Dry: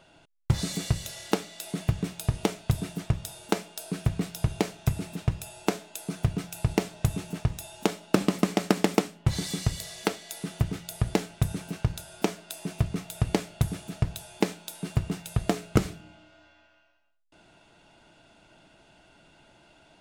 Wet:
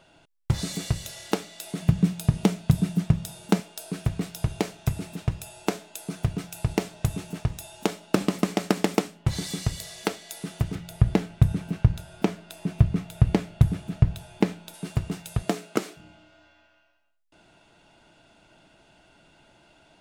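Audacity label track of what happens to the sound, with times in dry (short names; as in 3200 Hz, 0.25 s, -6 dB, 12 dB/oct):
1.820000	3.600000	bell 180 Hz +12.5 dB
10.750000	14.740000	tone controls bass +8 dB, treble -8 dB
15.410000	15.960000	HPF 120 Hz -> 330 Hz 24 dB/oct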